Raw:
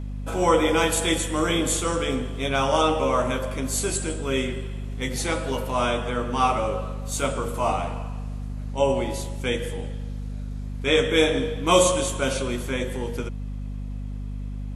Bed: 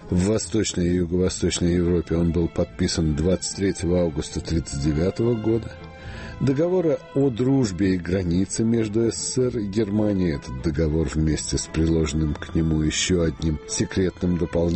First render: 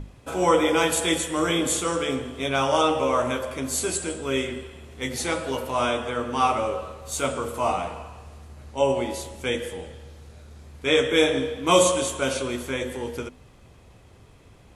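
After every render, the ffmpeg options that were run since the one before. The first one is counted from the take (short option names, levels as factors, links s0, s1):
-af "bandreject=f=50:t=h:w=6,bandreject=f=100:t=h:w=6,bandreject=f=150:t=h:w=6,bandreject=f=200:t=h:w=6,bandreject=f=250:t=h:w=6"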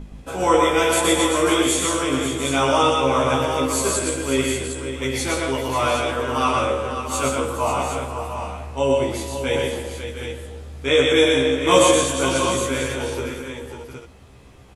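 -filter_complex "[0:a]asplit=2[s0][s1];[s1]adelay=15,volume=0.708[s2];[s0][s2]amix=inputs=2:normalize=0,aecho=1:1:120|176|425|542|702|760:0.708|0.299|0.141|0.335|0.266|0.376"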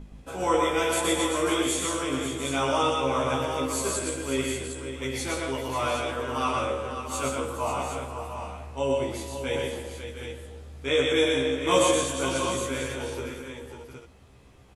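-af "volume=0.447"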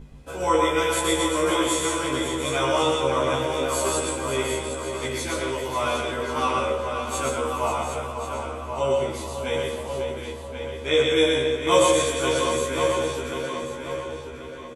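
-filter_complex "[0:a]asplit=2[s0][s1];[s1]adelay=13,volume=0.708[s2];[s0][s2]amix=inputs=2:normalize=0,asplit=2[s3][s4];[s4]adelay=1085,lowpass=f=3800:p=1,volume=0.473,asplit=2[s5][s6];[s6]adelay=1085,lowpass=f=3800:p=1,volume=0.35,asplit=2[s7][s8];[s8]adelay=1085,lowpass=f=3800:p=1,volume=0.35,asplit=2[s9][s10];[s10]adelay=1085,lowpass=f=3800:p=1,volume=0.35[s11];[s3][s5][s7][s9][s11]amix=inputs=5:normalize=0"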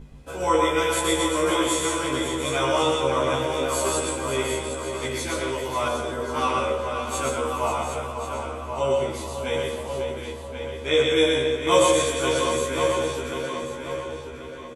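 -filter_complex "[0:a]asettb=1/sr,asplit=3[s0][s1][s2];[s0]atrim=end=5.884[s3];[s1]atrim=start=5.88:end=6.34,asetpts=PTS-STARTPTS,afade=t=in:d=0.004:c=qsin,afade=t=out:st=0.456:d=0.004:c=qsin,equalizer=f=2500:t=o:w=1.2:g=-8.5[s4];[s2]atrim=start=6.336[s5];[s3][s4]acrossfade=d=0.004:c1=hsin:c2=qsin[s6];[s6][s5]acrossfade=d=0.004:c1=qsin:c2=hsin"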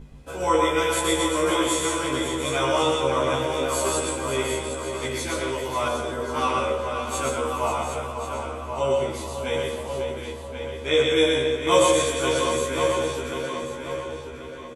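-af anull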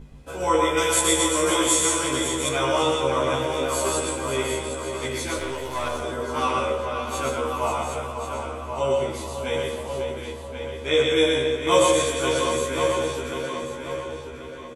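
-filter_complex "[0:a]asettb=1/sr,asplit=3[s0][s1][s2];[s0]atrim=end=0.774[s3];[s1]atrim=start=0.77:end=2.49,asetpts=PTS-STARTPTS,afade=t=in:d=0.004:c=qsin,afade=t=out:st=1.716:d=0.004:c=qsin,equalizer=f=7900:w=0.65:g=8[s4];[s2]atrim=start=2.486[s5];[s3][s4]acrossfade=d=0.004:c1=hsin:c2=qsin[s6];[s6][s5]acrossfade=d=0.004:c1=qsin:c2=hsin,asettb=1/sr,asplit=3[s7][s8][s9];[s7]atrim=end=5.384[s10];[s8]atrim=start=5.38:end=6.02,asetpts=PTS-STARTPTS,afade=t=in:d=0.004:c=qsin,afade=t=out:st=0.636:d=0.004:c=qsin,aeval=exprs='if(lt(val(0),0),0.447*val(0),val(0))':c=same[s11];[s9]atrim=start=6.016[s12];[s10][s11]acrossfade=d=0.004:c1=hsin:c2=qsin[s13];[s13][s12]acrossfade=d=0.004:c1=qsin:c2=hsin,asettb=1/sr,asplit=3[s14][s15][s16];[s14]atrim=end=6.854[s17];[s15]atrim=start=6.85:end=7.62,asetpts=PTS-STARTPTS,afade=t=in:d=0.004:c=qsin,afade=t=out:st=0.766:d=0.004:c=qsin,equalizer=f=8200:t=o:w=0.5:g=-6[s18];[s16]atrim=start=7.616[s19];[s17][s18]acrossfade=d=0.004:c1=hsin:c2=qsin[s20];[s20][s19]acrossfade=d=0.004:c1=qsin:c2=hsin"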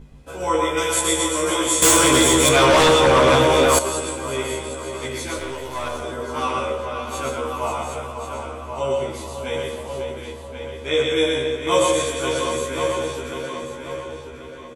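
-filter_complex "[0:a]asettb=1/sr,asplit=3[s0][s1][s2];[s0]atrim=end=1.824[s3];[s1]atrim=start=1.82:end=3.79,asetpts=PTS-STARTPTS,afade=t=in:d=0.004:c=qsin,afade=t=out:st=1.966:d=0.004:c=qsin,aeval=exprs='0.335*sin(PI/2*2.51*val(0)/0.335)':c=same[s4];[s2]atrim=start=3.786[s5];[s3][s4]acrossfade=d=0.004:c1=hsin:c2=qsin[s6];[s6][s5]acrossfade=d=0.004:c1=qsin:c2=hsin"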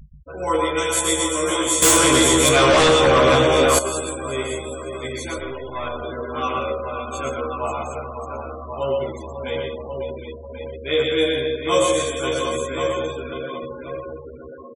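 -af "bandreject=f=920:w=13,afftfilt=real='re*gte(hypot(re,im),0.0282)':imag='im*gte(hypot(re,im),0.0282)':win_size=1024:overlap=0.75"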